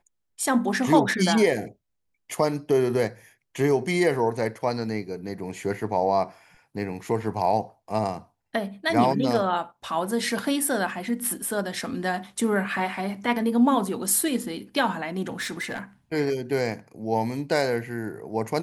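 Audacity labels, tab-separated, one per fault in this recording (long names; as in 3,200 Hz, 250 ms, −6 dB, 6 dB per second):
15.400000	15.790000	clipping −26 dBFS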